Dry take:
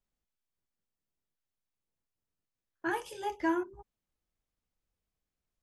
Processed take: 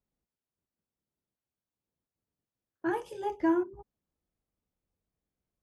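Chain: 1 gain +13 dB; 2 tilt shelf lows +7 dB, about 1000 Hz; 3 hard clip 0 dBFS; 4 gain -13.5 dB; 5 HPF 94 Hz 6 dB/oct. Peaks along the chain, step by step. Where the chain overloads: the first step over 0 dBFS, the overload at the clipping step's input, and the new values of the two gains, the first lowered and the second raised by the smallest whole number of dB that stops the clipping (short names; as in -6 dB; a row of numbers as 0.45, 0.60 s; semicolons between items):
-5.5, -2.5, -2.5, -16.0, -16.5 dBFS; no overload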